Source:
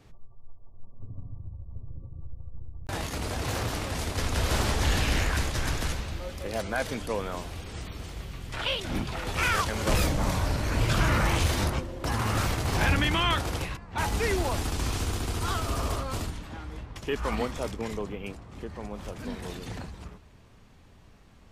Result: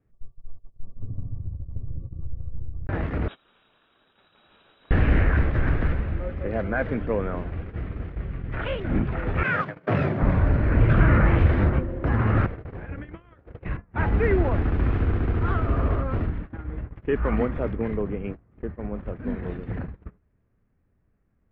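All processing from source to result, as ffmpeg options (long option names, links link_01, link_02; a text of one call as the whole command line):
ffmpeg -i in.wav -filter_complex "[0:a]asettb=1/sr,asplit=3[link_01][link_02][link_03];[link_01]atrim=end=3.284[link_04];[link_02]atrim=start=3.28:end=4.91,asetpts=PTS-STARTPTS,afade=type=in:duration=0.004:curve=qsin,afade=type=out:start_time=1.626:duration=0.004:curve=qsin,lowpass=frequency=3300:width_type=q:width=0.5098,lowpass=frequency=3300:width_type=q:width=0.6013,lowpass=frequency=3300:width_type=q:width=0.9,lowpass=frequency=3300:width_type=q:width=2.563,afreqshift=-3900,equalizer=frequency=2000:width_type=o:width=0.47:gain=-14.5[link_05];[link_03]atrim=start=4.906[link_06];[link_04][link_05]acrossfade=duration=0.004:curve1=hsin:curve2=qsin[link_07];[link_07][link_06]acrossfade=duration=0.004:curve1=qsin:curve2=hsin,asettb=1/sr,asplit=3[link_08][link_09][link_10];[link_08]atrim=end=9.434[link_11];[link_09]atrim=start=9.43:end=10.22,asetpts=PTS-STARTPTS,afade=type=in:duration=0.004:curve=qsin,afade=type=out:start_time=0.786:duration=0.004:curve=qsin,agate=range=-33dB:threshold=-25dB:ratio=3:release=100:detection=peak,bass=frequency=250:gain=-7,treble=frequency=4000:gain=5,afreqshift=77[link_12];[link_10]atrim=start=10.216[link_13];[link_11][link_12]acrossfade=duration=0.004:curve1=hsin:curve2=qsin[link_14];[link_14][link_13]acrossfade=duration=0.004:curve1=qsin:curve2=hsin,asettb=1/sr,asplit=3[link_15][link_16][link_17];[link_15]atrim=end=12.464[link_18];[link_16]atrim=start=12.46:end=13.65,asetpts=PTS-STARTPTS,afade=type=in:duration=0.004:curve=qsin,afade=type=out:start_time=1.186:duration=0.004:curve=qsin,agate=range=-33dB:threshold=-24dB:ratio=3:release=100:detection=peak,equalizer=frequency=480:width_type=o:width=0.72:gain=6,acompressor=threshold=-35dB:ratio=10:attack=3.2:release=140:knee=1:detection=peak[link_19];[link_17]atrim=start=13.646[link_20];[link_18][link_19]acrossfade=duration=0.004:curve1=hsin:curve2=qsin[link_21];[link_21][link_20]acrossfade=duration=0.004:curve1=qsin:curve2=hsin,lowpass=frequency=1800:width=0.5412,lowpass=frequency=1800:width=1.3066,equalizer=frequency=920:width_type=o:width=1.1:gain=-9.5,agate=range=-21dB:threshold=-39dB:ratio=16:detection=peak,volume=8dB" out.wav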